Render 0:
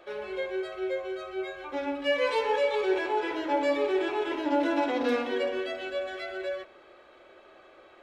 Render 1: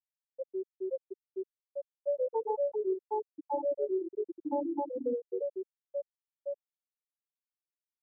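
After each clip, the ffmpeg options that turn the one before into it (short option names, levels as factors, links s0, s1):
-filter_complex "[0:a]highshelf=f=3600:g=-11.5,afftfilt=real='re*gte(hypot(re,im),0.316)':imag='im*gte(hypot(re,im),0.316)':win_size=1024:overlap=0.75,acrossover=split=330|1100[s0][s1][s2];[s0]acompressor=threshold=0.00891:ratio=4[s3];[s1]acompressor=threshold=0.0316:ratio=4[s4];[s2]acompressor=threshold=0.00447:ratio=4[s5];[s3][s4][s5]amix=inputs=3:normalize=0"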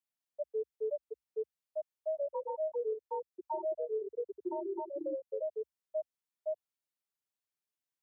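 -af "alimiter=level_in=1.88:limit=0.0631:level=0:latency=1:release=376,volume=0.531,afreqshift=58,volume=1.12"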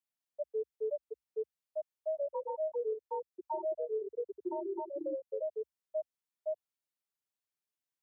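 -af anull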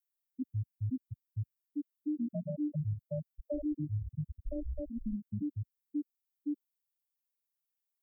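-af "afftdn=nr=12:nf=-45,afreqshift=-330,aemphasis=mode=production:type=50fm,volume=1.12"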